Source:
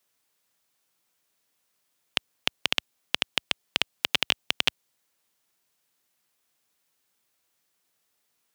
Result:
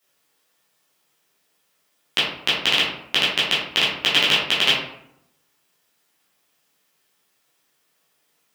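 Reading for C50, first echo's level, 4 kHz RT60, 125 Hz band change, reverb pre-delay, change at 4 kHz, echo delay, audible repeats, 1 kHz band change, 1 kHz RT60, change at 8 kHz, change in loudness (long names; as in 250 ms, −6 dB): 2.0 dB, no echo audible, 0.45 s, +9.0 dB, 9 ms, +9.5 dB, no echo audible, no echo audible, +9.5 dB, 0.70 s, +6.0 dB, +9.0 dB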